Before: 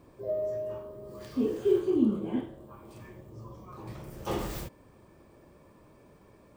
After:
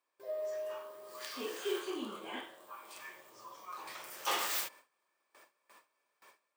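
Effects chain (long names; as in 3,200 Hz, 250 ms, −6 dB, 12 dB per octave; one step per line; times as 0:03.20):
high-pass filter 1,300 Hz 12 dB per octave
noise gate with hold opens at −57 dBFS
automatic gain control gain up to 4 dB
level +5 dB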